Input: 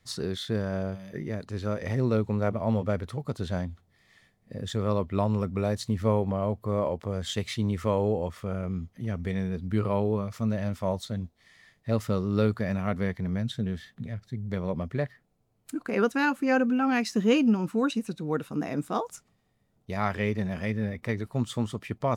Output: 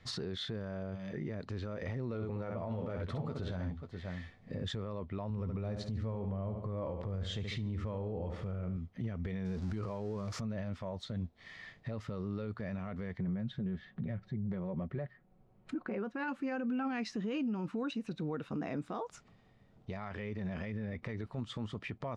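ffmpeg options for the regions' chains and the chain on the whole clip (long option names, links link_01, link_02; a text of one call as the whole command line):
ffmpeg -i in.wav -filter_complex "[0:a]asettb=1/sr,asplit=3[link_01][link_02][link_03];[link_01]atrim=end=2.134[link_04];[link_02]atrim=start=2.13:end=4.64,asetpts=PTS-STARTPTS,afade=type=in:duration=0.004:curve=qsin,afade=type=out:start_time=2.506:duration=0.004:curve=qsin,asplit=2[link_05][link_06];[link_06]adelay=12,volume=-8dB[link_07];[link_05][link_07]amix=inputs=2:normalize=0,atrim=end_sample=110691,aecho=1:1:64|535:0.398|0.112,atrim=end_sample=110691[link_08];[link_03]atrim=start=4.636[link_09];[link_04][link_08]acrossfade=duration=0.004:curve1=hsin:curve2=qsin[link_10];[link_10][link_09]acrossfade=duration=0.004:curve1=qsin:curve2=hsin,asettb=1/sr,asplit=3[link_11][link_12][link_13];[link_11]atrim=end=5.304[link_14];[link_12]atrim=start=5.3:end=8.77,asetpts=PTS-STARTPTS,afade=type=in:duration=0.004:curve=qsin,afade=type=out:start_time=3.466:duration=0.004:curve=qsin,lowshelf=frequency=160:gain=11,aecho=1:1:72|144|216|288|360:0.282|0.127|0.0571|0.0257|0.0116,atrim=end_sample=153027[link_15];[link_13]atrim=start=8.766[link_16];[link_14][link_15]acrossfade=duration=0.004:curve1=hsin:curve2=qsin[link_17];[link_17][link_16]acrossfade=duration=0.004:curve1=qsin:curve2=hsin,asettb=1/sr,asplit=3[link_18][link_19][link_20];[link_18]atrim=end=9.454[link_21];[link_19]atrim=start=9.45:end=10.41,asetpts=PTS-STARTPTS,afade=type=in:duration=0.004:curve=qsin,afade=type=out:start_time=0.956:duration=0.004:curve=qsin,aeval=exprs='val(0)+0.5*0.00944*sgn(val(0))':channel_layout=same,highshelf=frequency=4100:width_type=q:width=1.5:gain=8[link_22];[link_20]atrim=start=10.406[link_23];[link_21][link_22]acrossfade=duration=0.004:curve1=hsin:curve2=qsin[link_24];[link_24][link_23]acrossfade=duration=0.004:curve1=qsin:curve2=hsin,asettb=1/sr,asplit=3[link_25][link_26][link_27];[link_25]atrim=end=13.194[link_28];[link_26]atrim=start=13.19:end=16.28,asetpts=PTS-STARTPTS,afade=type=in:duration=0.004:curve=qsin,afade=type=out:start_time=3.086:duration=0.004:curve=qsin,lowpass=frequency=1400:poles=1,aecho=1:1:5.4:0.41,atrim=end_sample=136269[link_29];[link_27]atrim=start=16.276[link_30];[link_28][link_29]acrossfade=duration=0.004:curve1=hsin:curve2=qsin[link_31];[link_31][link_30]acrossfade=duration=0.004:curve1=qsin:curve2=hsin,lowpass=3900,acompressor=threshold=-42dB:ratio=3,alimiter=level_in=12.5dB:limit=-24dB:level=0:latency=1:release=20,volume=-12.5dB,volume=7dB" out.wav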